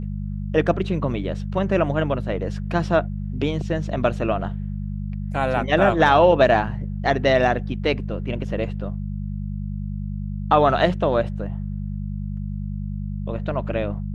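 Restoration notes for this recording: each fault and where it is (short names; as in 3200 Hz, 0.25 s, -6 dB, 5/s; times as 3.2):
hum 50 Hz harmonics 4 -28 dBFS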